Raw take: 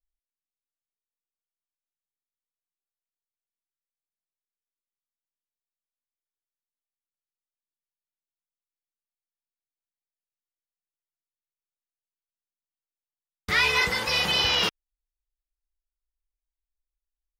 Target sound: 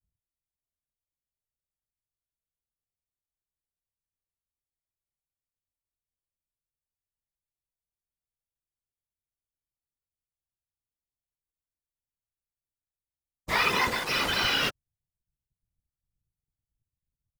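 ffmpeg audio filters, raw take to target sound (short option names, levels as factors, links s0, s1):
-filter_complex "[0:a]aecho=1:1:6.5:0.65,asplit=2[s0][s1];[s1]asetrate=22050,aresample=44100,atempo=2,volume=0.794[s2];[s0][s2]amix=inputs=2:normalize=0,afftfilt=real='hypot(re,im)*cos(2*PI*random(0))':imag='hypot(re,im)*sin(2*PI*random(1))':win_size=512:overlap=0.75,acrossover=split=330|1000|7000[s3][s4][s5][s6];[s5]acrusher=bits=5:mix=0:aa=0.5[s7];[s3][s4][s7][s6]amix=inputs=4:normalize=0"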